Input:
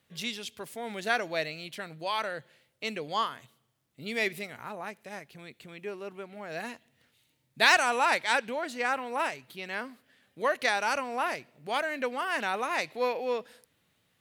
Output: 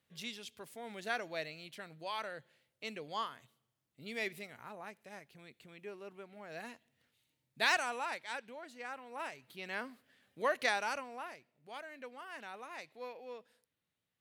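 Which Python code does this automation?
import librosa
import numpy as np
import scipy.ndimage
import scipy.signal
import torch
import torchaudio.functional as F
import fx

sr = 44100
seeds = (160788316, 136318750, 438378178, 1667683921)

y = fx.gain(x, sr, db=fx.line((7.75, -9.0), (8.18, -15.5), (9.01, -15.5), (9.68, -5.0), (10.71, -5.0), (11.34, -17.0)))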